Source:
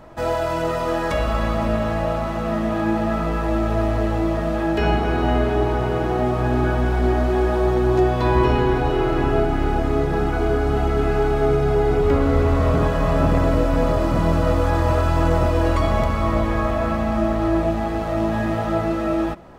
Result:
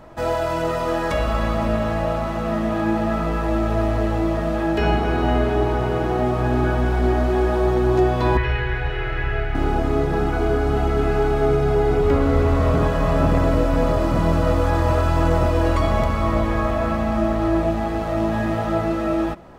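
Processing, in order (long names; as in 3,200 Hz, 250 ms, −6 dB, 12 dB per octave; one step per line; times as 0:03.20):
0:08.37–0:09.55: drawn EQ curve 110 Hz 0 dB, 250 Hz −22 dB, 440 Hz −8 dB, 1,100 Hz −10 dB, 1,800 Hz +8 dB, 7,200 Hz −14 dB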